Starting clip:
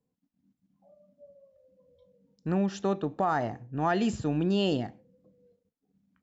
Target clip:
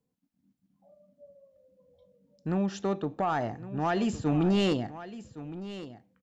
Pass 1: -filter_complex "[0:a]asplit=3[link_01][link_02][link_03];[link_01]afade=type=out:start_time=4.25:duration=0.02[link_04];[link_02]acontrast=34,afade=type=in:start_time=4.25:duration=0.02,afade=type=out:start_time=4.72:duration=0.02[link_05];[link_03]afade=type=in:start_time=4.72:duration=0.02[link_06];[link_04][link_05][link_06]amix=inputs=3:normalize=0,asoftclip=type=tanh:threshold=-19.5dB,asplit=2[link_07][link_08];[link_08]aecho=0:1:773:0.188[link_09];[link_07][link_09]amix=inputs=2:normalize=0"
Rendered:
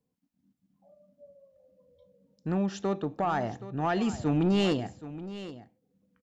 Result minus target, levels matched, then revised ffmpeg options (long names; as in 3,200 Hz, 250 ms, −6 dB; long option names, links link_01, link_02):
echo 341 ms early
-filter_complex "[0:a]asplit=3[link_01][link_02][link_03];[link_01]afade=type=out:start_time=4.25:duration=0.02[link_04];[link_02]acontrast=34,afade=type=in:start_time=4.25:duration=0.02,afade=type=out:start_time=4.72:duration=0.02[link_05];[link_03]afade=type=in:start_time=4.72:duration=0.02[link_06];[link_04][link_05][link_06]amix=inputs=3:normalize=0,asoftclip=type=tanh:threshold=-19.5dB,asplit=2[link_07][link_08];[link_08]aecho=0:1:1114:0.188[link_09];[link_07][link_09]amix=inputs=2:normalize=0"